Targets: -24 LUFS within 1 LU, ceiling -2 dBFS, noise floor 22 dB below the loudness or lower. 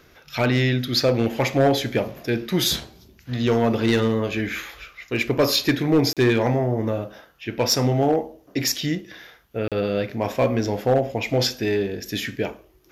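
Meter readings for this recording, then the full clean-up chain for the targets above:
clipped 0.6%; flat tops at -11.5 dBFS; dropouts 2; longest dropout 37 ms; loudness -22.5 LUFS; peak -11.5 dBFS; loudness target -24.0 LUFS
-> clip repair -11.5 dBFS; interpolate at 6.13/9.68, 37 ms; gain -1.5 dB

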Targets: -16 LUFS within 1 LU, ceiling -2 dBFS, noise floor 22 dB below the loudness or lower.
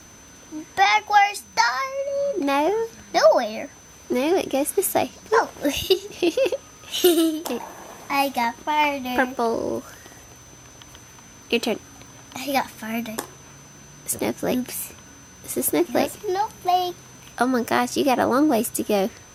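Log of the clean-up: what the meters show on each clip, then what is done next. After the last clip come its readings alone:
ticks 25/s; steady tone 6100 Hz; tone level -48 dBFS; loudness -22.5 LUFS; peak -5.0 dBFS; loudness target -16.0 LUFS
-> de-click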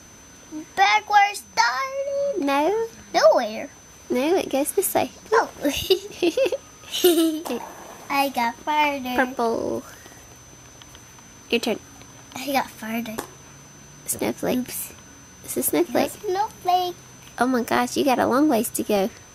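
ticks 0.10/s; steady tone 6100 Hz; tone level -48 dBFS
-> notch 6100 Hz, Q 30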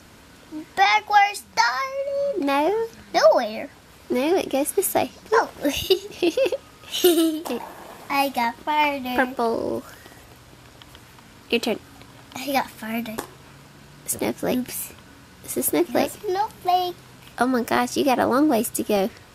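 steady tone none; loudness -22.5 LUFS; peak -5.0 dBFS; loudness target -16.0 LUFS
-> gain +6.5 dB; limiter -2 dBFS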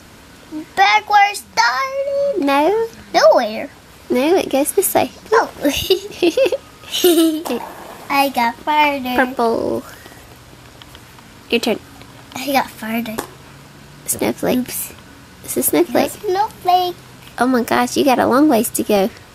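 loudness -16.5 LUFS; peak -2.0 dBFS; noise floor -42 dBFS

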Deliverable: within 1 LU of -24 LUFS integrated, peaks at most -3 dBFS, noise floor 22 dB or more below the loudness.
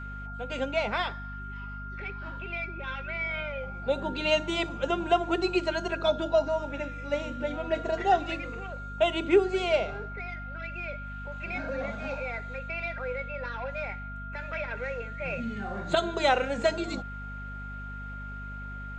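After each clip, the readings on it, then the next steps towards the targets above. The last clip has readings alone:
hum 50 Hz; harmonics up to 250 Hz; hum level -38 dBFS; steady tone 1400 Hz; tone level -40 dBFS; loudness -30.5 LUFS; peak -10.5 dBFS; loudness target -24.0 LUFS
-> notches 50/100/150/200/250 Hz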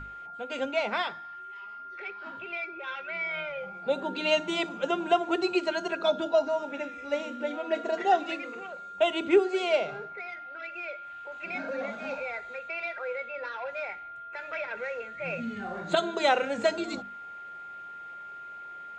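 hum none; steady tone 1400 Hz; tone level -40 dBFS
-> notch 1400 Hz, Q 30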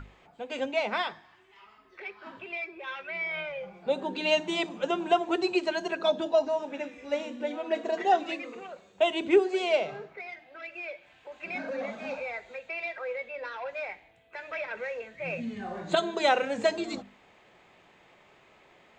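steady tone none; loudness -30.5 LUFS; peak -11.0 dBFS; loudness target -24.0 LUFS
-> gain +6.5 dB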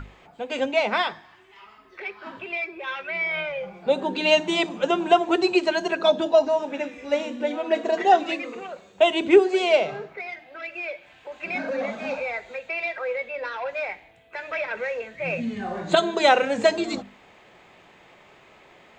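loudness -24.0 LUFS; peak -4.5 dBFS; noise floor -53 dBFS

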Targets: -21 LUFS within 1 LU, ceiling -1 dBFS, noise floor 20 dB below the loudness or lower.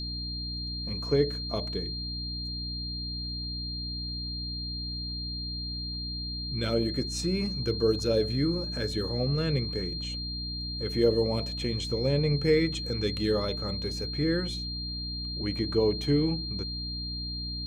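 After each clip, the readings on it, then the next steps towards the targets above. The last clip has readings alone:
hum 60 Hz; harmonics up to 300 Hz; hum level -35 dBFS; steady tone 4200 Hz; tone level -35 dBFS; loudness -30.0 LUFS; peak -12.0 dBFS; loudness target -21.0 LUFS
-> notches 60/120/180/240/300 Hz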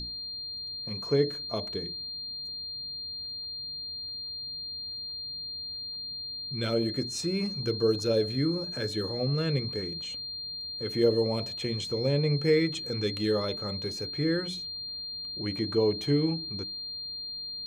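hum none; steady tone 4200 Hz; tone level -35 dBFS
-> notch 4200 Hz, Q 30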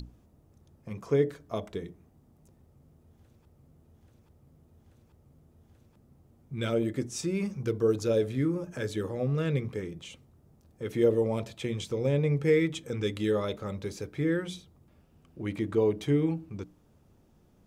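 steady tone none; loudness -30.0 LUFS; peak -13.0 dBFS; loudness target -21.0 LUFS
-> gain +9 dB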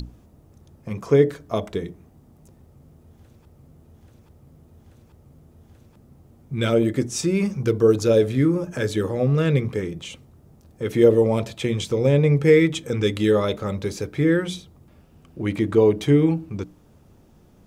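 loudness -21.0 LUFS; peak -4.0 dBFS; noise floor -54 dBFS

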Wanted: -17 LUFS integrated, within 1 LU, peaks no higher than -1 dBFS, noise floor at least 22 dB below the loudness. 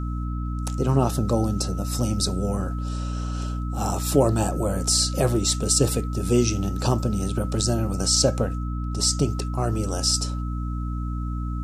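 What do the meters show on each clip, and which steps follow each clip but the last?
hum 60 Hz; harmonics up to 300 Hz; hum level -25 dBFS; steady tone 1300 Hz; tone level -39 dBFS; loudness -24.0 LUFS; peak -5.5 dBFS; loudness target -17.0 LUFS
-> notches 60/120/180/240/300 Hz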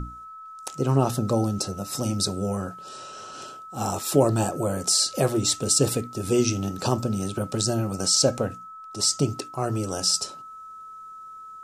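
hum none; steady tone 1300 Hz; tone level -39 dBFS
-> notch 1300 Hz, Q 30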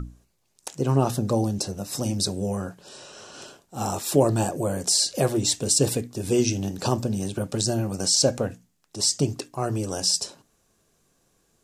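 steady tone none; loudness -24.5 LUFS; peak -6.5 dBFS; loudness target -17.0 LUFS
-> gain +7.5 dB; limiter -1 dBFS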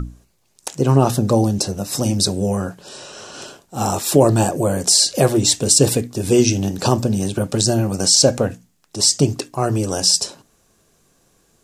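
loudness -17.0 LUFS; peak -1.0 dBFS; noise floor -61 dBFS

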